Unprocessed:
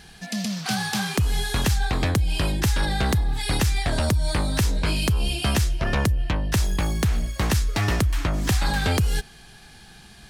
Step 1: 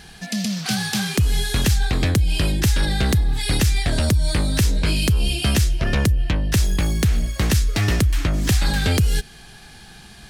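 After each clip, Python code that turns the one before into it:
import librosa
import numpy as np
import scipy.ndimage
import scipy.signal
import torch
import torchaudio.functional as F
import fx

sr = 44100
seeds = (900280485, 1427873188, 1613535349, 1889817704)

y = fx.dynamic_eq(x, sr, hz=940.0, q=1.1, threshold_db=-44.0, ratio=4.0, max_db=-8)
y = y * librosa.db_to_amplitude(4.0)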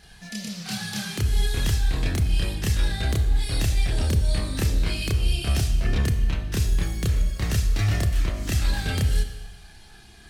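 y = fx.chorus_voices(x, sr, voices=4, hz=0.26, base_ms=29, depth_ms=1.6, mix_pct=55)
y = fx.rev_schroeder(y, sr, rt60_s=1.2, comb_ms=26, drr_db=8.0)
y = y * librosa.db_to_amplitude(-4.5)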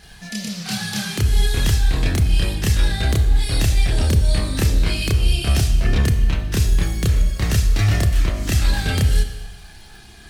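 y = fx.dmg_crackle(x, sr, seeds[0], per_s=280.0, level_db=-48.0)
y = y * librosa.db_to_amplitude(5.5)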